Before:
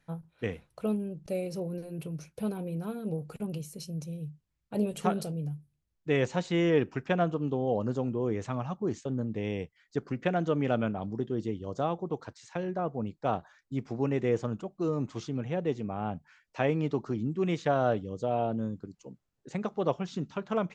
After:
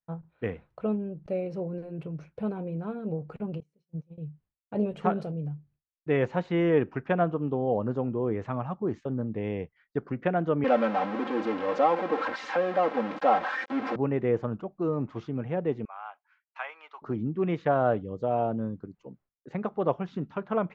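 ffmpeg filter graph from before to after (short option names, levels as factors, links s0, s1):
-filter_complex "[0:a]asettb=1/sr,asplit=3[s0][s1][s2];[s0]atrim=end=3.604[s3];[s1]atrim=start=3.6:end=4.18,asetpts=PTS-STARTPTS,afade=t=in:d=0.004:c=qsin,afade=t=out:st=0.576:d=0.004:c=qsin,bandreject=f=60:t=h:w=6,bandreject=f=120:t=h:w=6,bandreject=f=180:t=h:w=6,bandreject=f=240:t=h:w=6,bandreject=f=300:t=h:w=6,bandreject=f=360:t=h:w=6,bandreject=f=420:t=h:w=6,bandreject=f=480:t=h:w=6,agate=range=0.0562:threshold=0.0158:ratio=16:release=100:detection=peak[s4];[s2]atrim=start=4.176[s5];[s3][s4]acrossfade=d=0.004:c1=hsin:c2=qsin[s6];[s6][s5]acrossfade=d=0.004:c1=qsin:c2=hsin,asettb=1/sr,asplit=3[s7][s8][s9];[s7]atrim=end=10.644[s10];[s8]atrim=start=10.64:end=13.96,asetpts=PTS-STARTPTS,afade=t=in:d=0.004:c=qsin,afade=t=out:st=3.316:d=0.004:c=qsin,aeval=exprs='val(0)+0.5*0.0376*sgn(val(0))':c=same,highpass=340,lowpass=6000,aecho=1:1:3.8:0.97,atrim=end_sample=146412[s11];[s9]atrim=start=13.956[s12];[s10][s11]acrossfade=d=0.004:c1=hsin:c2=qsin[s13];[s13][s12]acrossfade=d=0.004:c1=qsin:c2=hsin,asettb=1/sr,asplit=3[s14][s15][s16];[s14]atrim=end=15.854[s17];[s15]atrim=start=15.85:end=17.02,asetpts=PTS-STARTPTS,afade=t=in:d=0.004:c=qsin,afade=t=out:st=1.166:d=0.004:c=qsin,highpass=f=1000:w=0.5412,highpass=f=1000:w=1.3066,bandreject=f=1800:w=12[s18];[s16]atrim=start=17.016[s19];[s17][s18]acrossfade=d=0.004:c1=hsin:c2=qsin[s20];[s20][s19]acrossfade=d=0.004:c1=qsin:c2=hsin,lowpass=1800,agate=range=0.0224:threshold=0.00141:ratio=3:detection=peak,lowshelf=f=480:g=-3.5,volume=1.58"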